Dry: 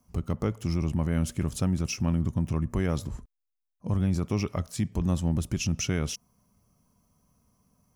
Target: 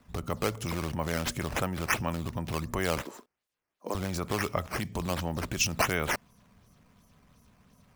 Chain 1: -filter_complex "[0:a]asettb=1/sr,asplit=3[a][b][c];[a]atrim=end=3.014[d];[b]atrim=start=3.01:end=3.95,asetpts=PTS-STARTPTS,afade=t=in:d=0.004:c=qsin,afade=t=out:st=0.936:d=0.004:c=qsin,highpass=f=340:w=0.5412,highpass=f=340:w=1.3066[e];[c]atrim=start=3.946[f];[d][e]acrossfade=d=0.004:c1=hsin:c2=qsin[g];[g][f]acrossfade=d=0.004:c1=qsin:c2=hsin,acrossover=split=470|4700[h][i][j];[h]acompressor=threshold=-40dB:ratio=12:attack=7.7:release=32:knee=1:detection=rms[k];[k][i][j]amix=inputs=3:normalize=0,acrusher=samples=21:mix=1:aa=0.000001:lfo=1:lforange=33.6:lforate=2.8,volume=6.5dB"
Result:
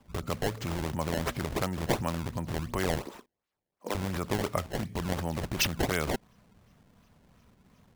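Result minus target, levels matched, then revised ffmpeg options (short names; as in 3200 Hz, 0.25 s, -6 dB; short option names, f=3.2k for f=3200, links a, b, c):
decimation with a swept rate: distortion +4 dB
-filter_complex "[0:a]asettb=1/sr,asplit=3[a][b][c];[a]atrim=end=3.014[d];[b]atrim=start=3.01:end=3.95,asetpts=PTS-STARTPTS,afade=t=in:d=0.004:c=qsin,afade=t=out:st=0.936:d=0.004:c=qsin,highpass=f=340:w=0.5412,highpass=f=340:w=1.3066[e];[c]atrim=start=3.946[f];[d][e]acrossfade=d=0.004:c1=hsin:c2=qsin[g];[g][f]acrossfade=d=0.004:c1=qsin:c2=hsin,acrossover=split=470|4700[h][i][j];[h]acompressor=threshold=-40dB:ratio=12:attack=7.7:release=32:knee=1:detection=rms[k];[k][i][j]amix=inputs=3:normalize=0,acrusher=samples=7:mix=1:aa=0.000001:lfo=1:lforange=11.2:lforate=2.8,volume=6.5dB"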